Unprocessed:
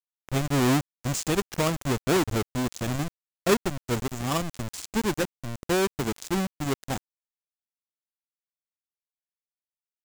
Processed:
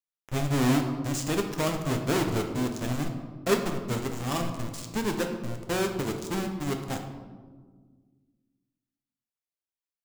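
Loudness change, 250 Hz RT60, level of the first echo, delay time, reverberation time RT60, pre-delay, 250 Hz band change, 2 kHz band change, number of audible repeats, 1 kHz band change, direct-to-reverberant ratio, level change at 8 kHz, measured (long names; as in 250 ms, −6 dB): −1.5 dB, 2.4 s, no echo audible, no echo audible, 1.5 s, 6 ms, −1.0 dB, −2.5 dB, no echo audible, −2.0 dB, 3.5 dB, −3.0 dB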